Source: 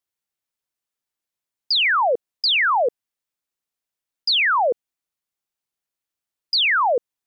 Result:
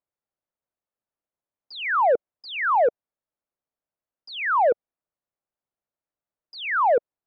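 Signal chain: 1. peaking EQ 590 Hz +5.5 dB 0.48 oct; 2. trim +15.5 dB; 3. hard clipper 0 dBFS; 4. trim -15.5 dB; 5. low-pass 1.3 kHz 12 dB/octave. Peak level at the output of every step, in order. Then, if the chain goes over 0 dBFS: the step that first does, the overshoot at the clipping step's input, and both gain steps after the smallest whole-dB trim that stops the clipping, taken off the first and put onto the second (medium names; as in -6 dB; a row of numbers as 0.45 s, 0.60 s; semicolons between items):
-9.5 dBFS, +6.0 dBFS, 0.0 dBFS, -15.5 dBFS, -15.0 dBFS; step 2, 6.0 dB; step 2 +9.5 dB, step 4 -9.5 dB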